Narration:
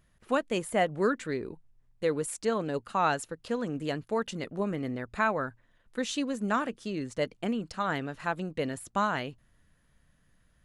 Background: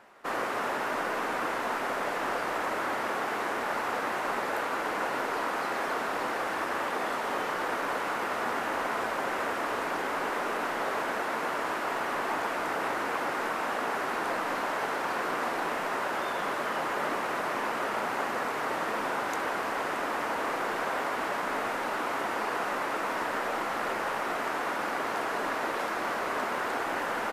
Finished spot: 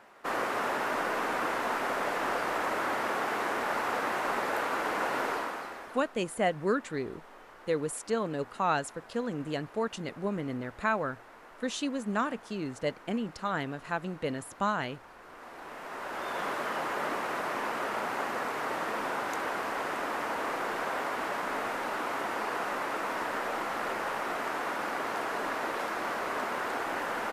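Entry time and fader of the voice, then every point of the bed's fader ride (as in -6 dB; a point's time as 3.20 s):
5.65 s, -1.5 dB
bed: 5.30 s 0 dB
6.14 s -21 dB
15.18 s -21 dB
16.39 s -2 dB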